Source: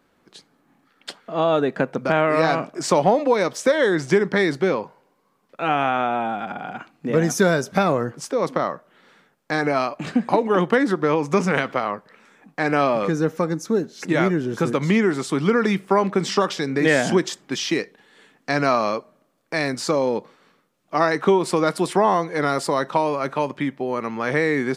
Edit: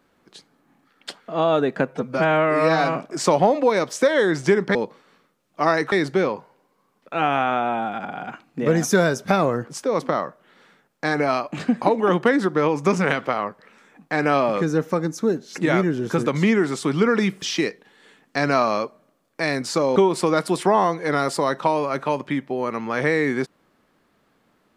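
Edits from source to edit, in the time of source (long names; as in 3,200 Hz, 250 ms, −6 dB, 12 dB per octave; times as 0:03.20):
0:01.88–0:02.60: time-stretch 1.5×
0:15.89–0:17.55: remove
0:20.09–0:21.26: move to 0:04.39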